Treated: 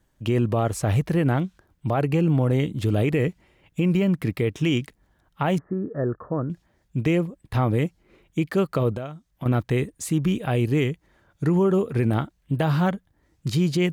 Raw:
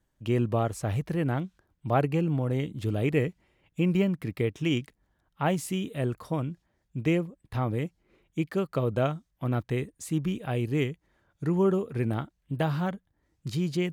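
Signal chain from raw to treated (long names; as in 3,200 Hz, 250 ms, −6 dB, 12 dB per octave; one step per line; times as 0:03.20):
0:08.92–0:09.46: downward compressor 8 to 1, threshold −38 dBFS, peak gain reduction 16.5 dB
brickwall limiter −21.5 dBFS, peak gain reduction 10 dB
0:05.58–0:06.50: Chebyshev low-pass with heavy ripple 1,800 Hz, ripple 6 dB
level +8 dB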